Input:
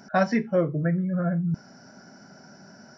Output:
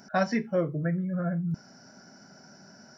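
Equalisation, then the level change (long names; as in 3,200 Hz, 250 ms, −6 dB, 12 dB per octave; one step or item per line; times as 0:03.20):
high-shelf EQ 4,400 Hz +7 dB
−4.0 dB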